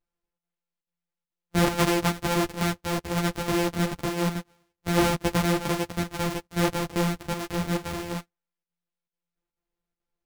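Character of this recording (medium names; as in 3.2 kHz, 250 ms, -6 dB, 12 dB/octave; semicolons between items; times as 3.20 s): a buzz of ramps at a fixed pitch in blocks of 256 samples; chopped level 2.3 Hz, depth 60%, duty 85%; a shimmering, thickened sound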